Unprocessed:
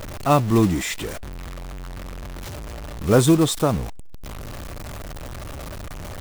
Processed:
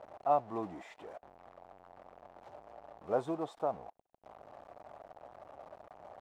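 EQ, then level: band-pass filter 730 Hz, Q 3.3; -6.0 dB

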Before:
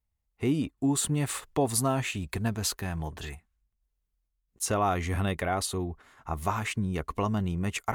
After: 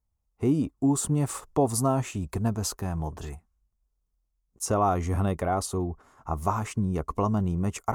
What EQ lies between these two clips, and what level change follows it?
high-order bell 2.6 kHz -11 dB; treble shelf 7.9 kHz -7.5 dB; +3.0 dB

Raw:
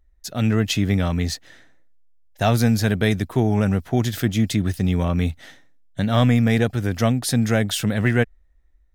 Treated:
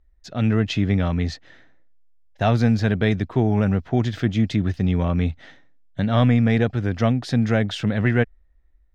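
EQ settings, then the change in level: distance through air 170 m; 0.0 dB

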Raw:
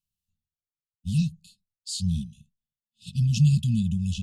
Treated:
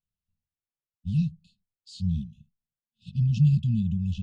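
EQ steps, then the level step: dynamic bell 320 Hz, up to -3 dB, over -42 dBFS, Q 1.6; tape spacing loss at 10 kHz 33 dB; treble shelf 5.4 kHz +7.5 dB; 0.0 dB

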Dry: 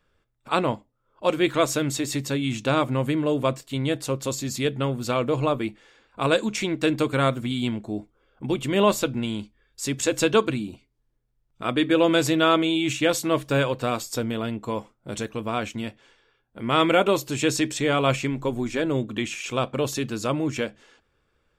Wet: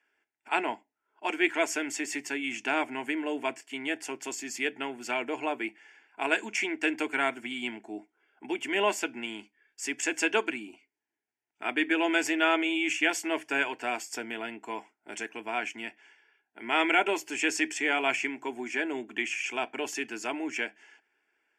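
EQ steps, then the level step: band-pass 210–3700 Hz; tilt EQ +4 dB/octave; static phaser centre 790 Hz, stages 8; 0.0 dB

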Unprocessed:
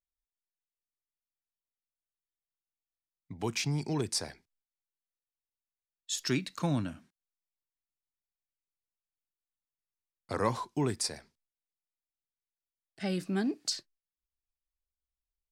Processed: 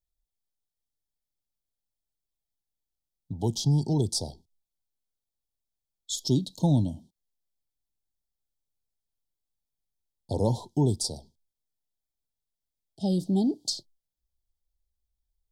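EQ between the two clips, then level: Chebyshev band-stop 910–3200 Hz, order 5; bass shelf 180 Hz +11 dB; +3.0 dB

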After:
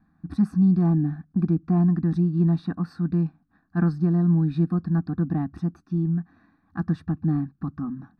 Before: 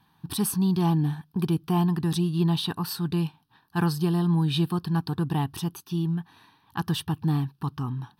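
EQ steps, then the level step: tape spacing loss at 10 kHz 34 dB; bass shelf 260 Hz +10.5 dB; static phaser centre 620 Hz, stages 8; +2.0 dB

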